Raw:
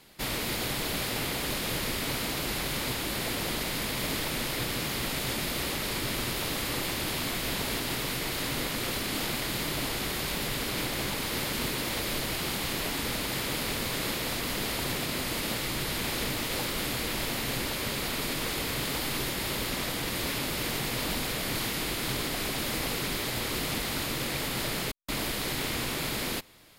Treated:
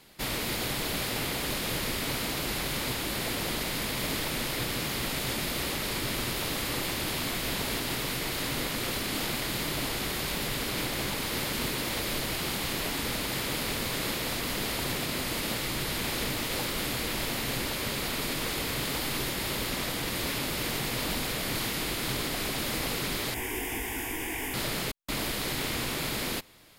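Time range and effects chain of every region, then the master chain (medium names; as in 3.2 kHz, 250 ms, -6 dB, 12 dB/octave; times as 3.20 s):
23.34–24.54 s: static phaser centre 850 Hz, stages 8 + doubling 19 ms -5 dB
whole clip: none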